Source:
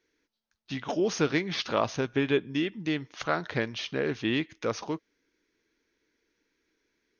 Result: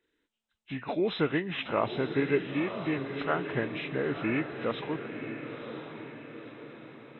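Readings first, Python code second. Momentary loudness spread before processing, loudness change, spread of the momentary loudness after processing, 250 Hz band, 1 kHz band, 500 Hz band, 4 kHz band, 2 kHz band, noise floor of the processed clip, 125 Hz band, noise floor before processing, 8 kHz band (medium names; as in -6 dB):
7 LU, -2.0 dB, 16 LU, -1.0 dB, -0.5 dB, -0.5 dB, -5.5 dB, -1.0 dB, -80 dBFS, -0.5 dB, -80 dBFS, no reading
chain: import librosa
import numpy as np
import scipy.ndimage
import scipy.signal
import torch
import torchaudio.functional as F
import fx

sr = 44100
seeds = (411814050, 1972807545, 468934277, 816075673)

y = fx.freq_compress(x, sr, knee_hz=1500.0, ratio=1.5)
y = fx.echo_diffused(y, sr, ms=990, feedback_pct=50, wet_db=-8.0)
y = F.gain(torch.from_numpy(y), -1.5).numpy()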